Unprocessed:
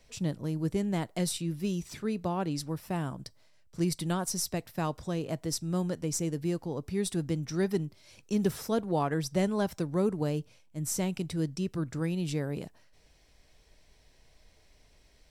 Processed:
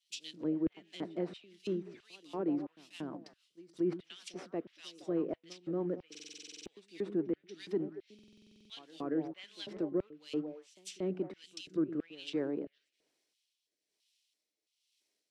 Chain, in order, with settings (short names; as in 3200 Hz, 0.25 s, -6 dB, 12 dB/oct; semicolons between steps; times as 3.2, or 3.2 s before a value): CVSD 64 kbps; on a send: delay with a stepping band-pass 0.113 s, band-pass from 220 Hz, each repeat 1.4 oct, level -9 dB; on the sum: LFO high-pass square 1.5 Hz 320–3000 Hz; pre-echo 0.233 s -18 dB; rotary speaker horn 6.3 Hz, later 1.1 Hz, at 6.66; limiter -24 dBFS, peak gain reduction 10.5 dB; treble ducked by the level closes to 1700 Hz, closed at -34 dBFS; stuck buffer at 6.1/8.14, samples 2048, times 11; three-band expander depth 70%; gain -2 dB